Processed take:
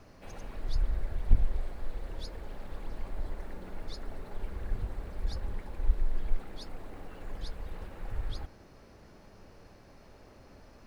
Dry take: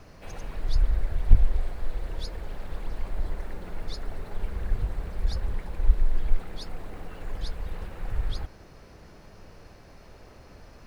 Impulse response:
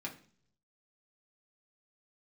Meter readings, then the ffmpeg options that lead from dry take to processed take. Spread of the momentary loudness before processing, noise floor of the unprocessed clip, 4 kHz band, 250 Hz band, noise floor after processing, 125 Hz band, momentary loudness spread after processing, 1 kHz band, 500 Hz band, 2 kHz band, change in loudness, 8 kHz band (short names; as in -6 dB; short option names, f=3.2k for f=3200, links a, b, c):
23 LU, -50 dBFS, -5.5 dB, -3.5 dB, -55 dBFS, -6.5 dB, 21 LU, -4.5 dB, -4.0 dB, -5.5 dB, -6.5 dB, n/a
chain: -filter_complex "[0:a]asplit=2[a][b];[1:a]atrim=start_sample=2205,lowpass=1.3k[c];[b][c]afir=irnorm=-1:irlink=0,volume=-9dB[d];[a][d]amix=inputs=2:normalize=0,volume=-5.5dB"